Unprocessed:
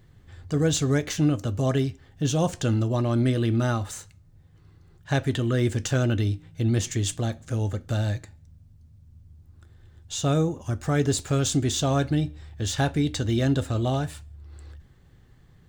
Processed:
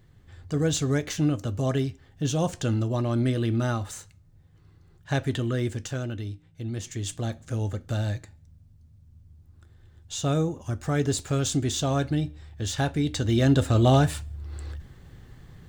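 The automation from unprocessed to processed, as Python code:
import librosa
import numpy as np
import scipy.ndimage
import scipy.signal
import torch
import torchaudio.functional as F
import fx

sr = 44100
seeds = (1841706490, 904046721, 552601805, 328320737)

y = fx.gain(x, sr, db=fx.line((5.41, -2.0), (6.13, -9.5), (6.75, -9.5), (7.31, -2.0), (12.98, -2.0), (14.0, 7.5)))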